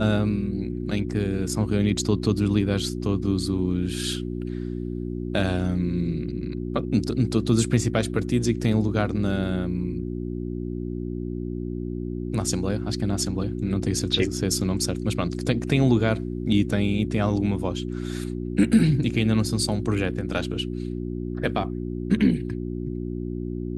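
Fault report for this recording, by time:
hum 60 Hz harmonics 6 -30 dBFS

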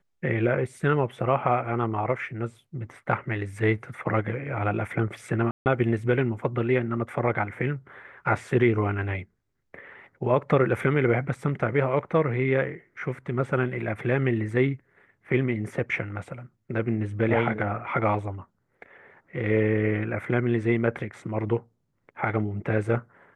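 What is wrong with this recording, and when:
5.51–5.66 s: dropout 149 ms

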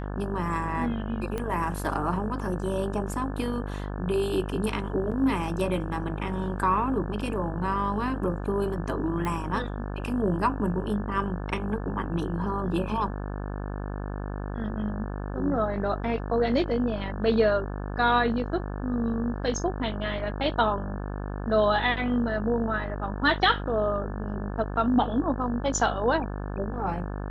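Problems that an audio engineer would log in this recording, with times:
buzz 50 Hz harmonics 35 -33 dBFS
1.38 s: pop -18 dBFS
5.11–5.12 s: dropout 6.5 ms
9.25 s: pop -18 dBFS

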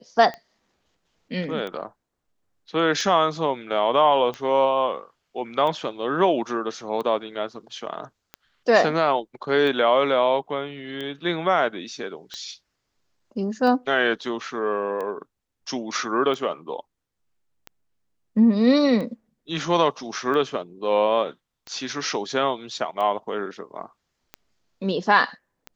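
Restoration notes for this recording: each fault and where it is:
tick 45 rpm -20 dBFS

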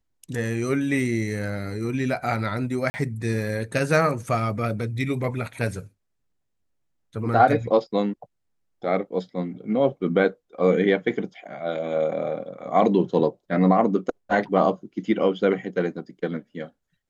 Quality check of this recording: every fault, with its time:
2.90–2.94 s: dropout 40 ms

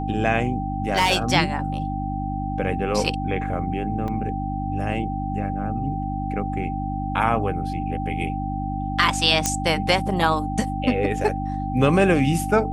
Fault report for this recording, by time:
hum 50 Hz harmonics 6 -28 dBFS
whine 780 Hz -29 dBFS
0.89–1.33 s: clipped -13.5 dBFS
4.08 s: dropout 2.3 ms
9.46 s: pop -5 dBFS

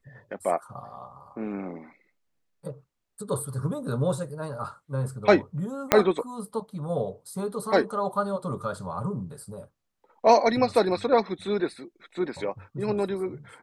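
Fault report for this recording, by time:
5.92 s: pop -2 dBFS

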